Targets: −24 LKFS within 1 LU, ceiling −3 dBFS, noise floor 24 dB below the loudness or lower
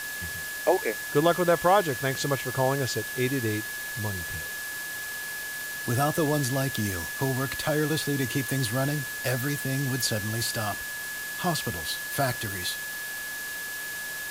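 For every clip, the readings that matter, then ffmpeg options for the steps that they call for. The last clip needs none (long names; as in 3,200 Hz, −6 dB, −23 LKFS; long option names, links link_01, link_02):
interfering tone 1,700 Hz; level of the tone −34 dBFS; background noise floor −35 dBFS; target noise floor −52 dBFS; integrated loudness −28.0 LKFS; sample peak −8.5 dBFS; target loudness −24.0 LKFS
→ -af "bandreject=frequency=1700:width=30"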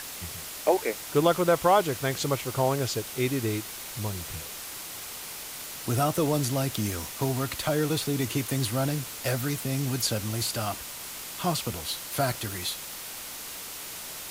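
interfering tone none found; background noise floor −39 dBFS; target noise floor −53 dBFS
→ -af "afftdn=noise_reduction=14:noise_floor=-39"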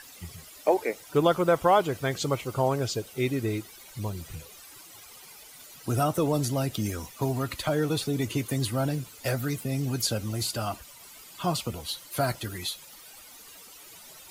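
background noise floor −49 dBFS; target noise floor −53 dBFS
→ -af "afftdn=noise_reduction=6:noise_floor=-49"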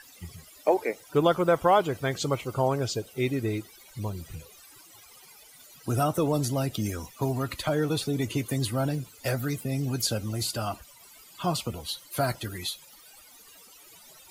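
background noise floor −53 dBFS; integrated loudness −28.5 LKFS; sample peak −9.5 dBFS; target loudness −24.0 LKFS
→ -af "volume=4.5dB"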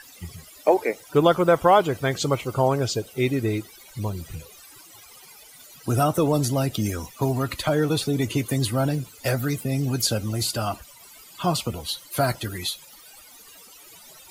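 integrated loudness −24.0 LKFS; sample peak −5.0 dBFS; background noise floor −48 dBFS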